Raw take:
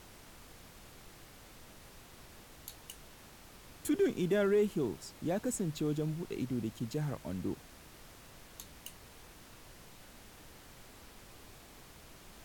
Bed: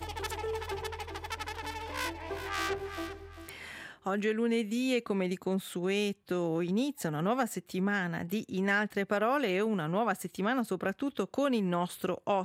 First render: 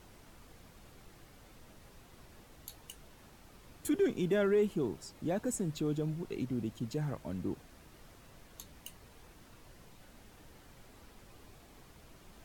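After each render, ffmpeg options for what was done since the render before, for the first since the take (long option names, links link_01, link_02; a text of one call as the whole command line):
ffmpeg -i in.wav -af "afftdn=noise_reduction=6:noise_floor=-56" out.wav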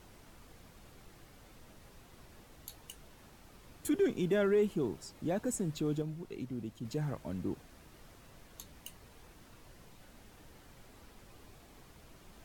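ffmpeg -i in.wav -filter_complex "[0:a]asplit=3[link_01][link_02][link_03];[link_01]atrim=end=6.022[link_04];[link_02]atrim=start=6.018:end=6.852,asetpts=PTS-STARTPTS,volume=-4.5dB[link_05];[link_03]atrim=start=6.848[link_06];[link_04][link_05]acrossfade=duration=0.004:curve1=hsin:curve2=hsin[link_07];[link_07][link_06]acrossfade=duration=0.004:curve1=hsin:curve2=hsin" out.wav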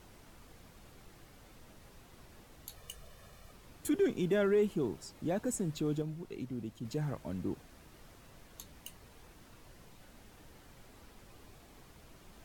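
ffmpeg -i in.wav -filter_complex "[0:a]asettb=1/sr,asplit=3[link_01][link_02][link_03];[link_01]atrim=end=2.764[link_04];[link_02]atrim=start=2.76:end=3.52,asetpts=PTS-STARTPTS,afade=type=in:duration=0.004:curve=qsin,afade=type=out:start_time=0.756:duration=0.004:curve=qsin,aecho=1:1:1.7:0.65,atrim=end_sample=33516[link_05];[link_03]atrim=start=3.516[link_06];[link_04][link_05]acrossfade=duration=0.004:curve1=hsin:curve2=qsin[link_07];[link_07][link_06]acrossfade=duration=0.004:curve1=qsin:curve2=hsin" out.wav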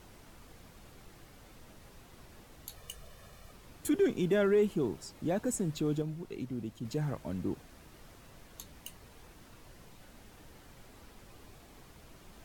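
ffmpeg -i in.wav -af "volume=2dB" out.wav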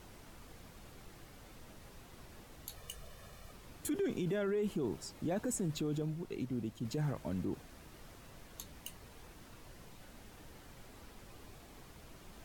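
ffmpeg -i in.wav -af "alimiter=level_in=4.5dB:limit=-24dB:level=0:latency=1:release=23,volume=-4.5dB" out.wav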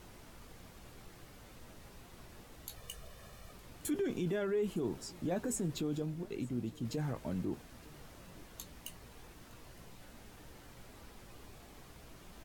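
ffmpeg -i in.wav -filter_complex "[0:a]asplit=2[link_01][link_02];[link_02]adelay=17,volume=-11.5dB[link_03];[link_01][link_03]amix=inputs=2:normalize=0,aecho=1:1:912:0.075" out.wav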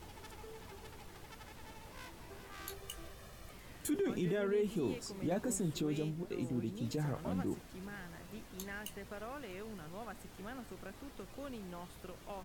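ffmpeg -i in.wav -i bed.wav -filter_complex "[1:a]volume=-17.5dB[link_01];[0:a][link_01]amix=inputs=2:normalize=0" out.wav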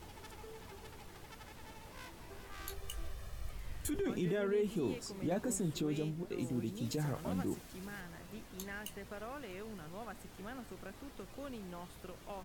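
ffmpeg -i in.wav -filter_complex "[0:a]asettb=1/sr,asplit=3[link_01][link_02][link_03];[link_01]atrim=end=2.194[link_04];[link_02]atrim=start=2.19:end=4.06,asetpts=PTS-STARTPTS,afade=type=in:duration=0.004:curve=qsin,afade=type=out:start_time=1.866:duration=0.004:curve=qsin,asubboost=boost=11.5:cutoff=91[link_05];[link_03]atrim=start=4.056[link_06];[link_04][link_05]acrossfade=duration=0.004:curve1=hsin:curve2=qsin[link_07];[link_07][link_06]acrossfade=duration=0.004:curve1=qsin:curve2=hsin,asettb=1/sr,asplit=3[link_08][link_09][link_10];[link_08]atrim=end=6.384[link_11];[link_09]atrim=start=6.38:end=8.01,asetpts=PTS-STARTPTS,afade=type=in:duration=0.004:curve=qsin,afade=type=out:start_time=1.626:duration=0.004:curve=qsin,highshelf=frequency=4000:gain=6[link_12];[link_10]atrim=start=8.006[link_13];[link_11][link_12]acrossfade=duration=0.004:curve1=hsin:curve2=qsin[link_14];[link_14][link_13]acrossfade=duration=0.004:curve1=qsin:curve2=hsin" out.wav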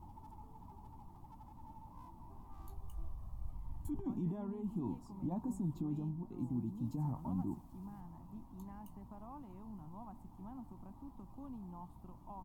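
ffmpeg -i in.wav -af "firequalizer=gain_entry='entry(280,0);entry(450,-21);entry(920,4);entry(1500,-27);entry(15000,-14)':delay=0.05:min_phase=1" out.wav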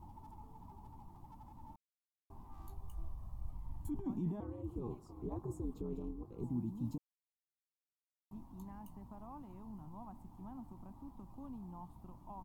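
ffmpeg -i in.wav -filter_complex "[0:a]asettb=1/sr,asplit=3[link_01][link_02][link_03];[link_01]atrim=end=4.404[link_04];[link_02]atrim=start=4.4:end=6.44,asetpts=PTS-STARTPTS,afade=type=in:duration=0.004:curve=qsin,afade=type=out:start_time=2.036:duration=0.004:curve=qsin,aeval=exprs='val(0)*sin(2*PI*120*n/s)':channel_layout=same[link_05];[link_03]atrim=start=6.436[link_06];[link_04][link_05]acrossfade=duration=0.004:curve1=hsin:curve2=qsin[link_07];[link_07][link_06]acrossfade=duration=0.004:curve1=qsin:curve2=hsin,asplit=5[link_08][link_09][link_10][link_11][link_12];[link_08]atrim=end=1.76,asetpts=PTS-STARTPTS,afade=type=out:start_time=1.756:duration=0.004:curve=hsin[link_13];[link_09]atrim=start=1.76:end=2.3,asetpts=PTS-STARTPTS,volume=0[link_14];[link_10]atrim=start=2.3:end=6.98,asetpts=PTS-STARTPTS,afade=type=in:duration=0.004:curve=hsin,afade=type=out:start_time=4.676:duration=0.004:curve=hsin[link_15];[link_11]atrim=start=6.98:end=8.31,asetpts=PTS-STARTPTS,volume=0[link_16];[link_12]atrim=start=8.31,asetpts=PTS-STARTPTS,afade=type=in:duration=0.004:curve=hsin[link_17];[link_13][link_14][link_15][link_16][link_17]concat=n=5:v=0:a=1" out.wav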